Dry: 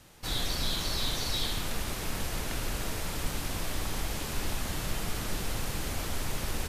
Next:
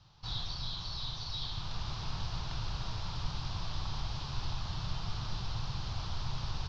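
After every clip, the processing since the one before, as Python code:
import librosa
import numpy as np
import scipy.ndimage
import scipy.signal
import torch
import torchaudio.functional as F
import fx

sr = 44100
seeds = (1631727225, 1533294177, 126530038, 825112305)

y = fx.graphic_eq(x, sr, hz=(125, 250, 500, 1000, 2000, 4000), db=(10, -11, -10, 7, -12, 5))
y = fx.rider(y, sr, range_db=10, speed_s=0.5)
y = scipy.signal.sosfilt(scipy.signal.butter(8, 5500.0, 'lowpass', fs=sr, output='sos'), y)
y = F.gain(torch.from_numpy(y), -5.5).numpy()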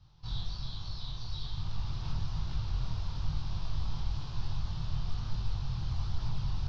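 y = fx.low_shelf(x, sr, hz=260.0, db=10.5)
y = fx.chorus_voices(y, sr, voices=2, hz=1.2, base_ms=22, depth_ms=3.0, mix_pct=45)
y = F.gain(torch.from_numpy(y), -3.0).numpy()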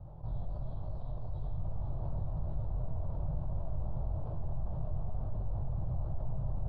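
y = fx.lowpass_res(x, sr, hz=610.0, q=4.9)
y = y + 10.0 ** (-6.0 / 20.0) * np.pad(y, (int(1158 * sr / 1000.0), 0))[:len(y)]
y = fx.env_flatten(y, sr, amount_pct=50)
y = F.gain(torch.from_numpy(y), -6.5).numpy()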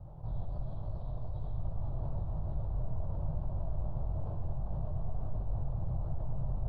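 y = x + 10.0 ** (-8.5 / 20.0) * np.pad(x, (int(126 * sr / 1000.0), 0))[:len(x)]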